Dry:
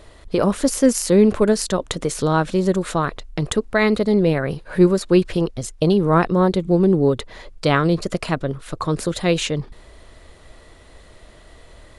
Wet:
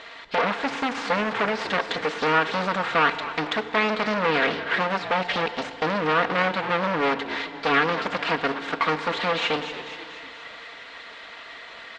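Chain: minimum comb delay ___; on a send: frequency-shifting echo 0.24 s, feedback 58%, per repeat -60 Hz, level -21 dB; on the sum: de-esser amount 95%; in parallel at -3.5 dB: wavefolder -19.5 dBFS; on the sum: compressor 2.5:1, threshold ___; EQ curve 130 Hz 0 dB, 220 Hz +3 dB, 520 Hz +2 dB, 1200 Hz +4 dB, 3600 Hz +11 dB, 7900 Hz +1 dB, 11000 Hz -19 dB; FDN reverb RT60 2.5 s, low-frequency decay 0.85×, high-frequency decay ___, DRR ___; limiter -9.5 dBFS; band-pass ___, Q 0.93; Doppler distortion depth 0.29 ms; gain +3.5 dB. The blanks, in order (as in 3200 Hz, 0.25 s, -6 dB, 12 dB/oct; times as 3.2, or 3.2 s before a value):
4.3 ms, -19 dBFS, 0.95×, 10.5 dB, 1500 Hz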